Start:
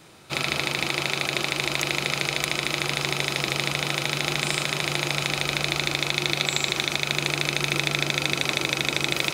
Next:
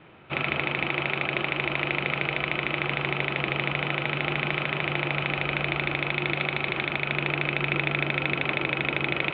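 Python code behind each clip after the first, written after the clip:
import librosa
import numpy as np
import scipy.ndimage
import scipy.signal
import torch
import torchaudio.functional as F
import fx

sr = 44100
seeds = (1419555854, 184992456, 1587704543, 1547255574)

y = scipy.signal.sosfilt(scipy.signal.butter(8, 3100.0, 'lowpass', fs=sr, output='sos'), x)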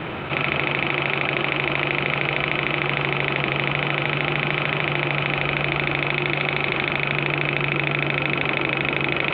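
y = fx.quant_float(x, sr, bits=8)
y = fx.env_flatten(y, sr, amount_pct=70)
y = y * 10.0 ** (2.5 / 20.0)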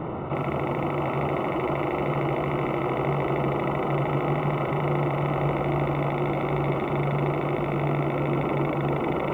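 y = scipy.signal.savgol_filter(x, 65, 4, mode='constant')
y = fx.echo_feedback(y, sr, ms=706, feedback_pct=21, wet_db=-5.0)
y = fx.echo_crushed(y, sr, ms=349, feedback_pct=35, bits=8, wet_db=-13.5)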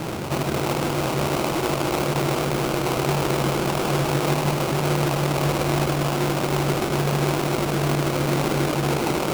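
y = fx.sample_hold(x, sr, seeds[0], rate_hz=1800.0, jitter_pct=20)
y = y * 10.0 ** (3.0 / 20.0)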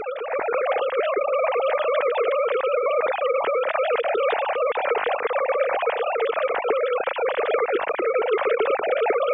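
y = fx.sine_speech(x, sr)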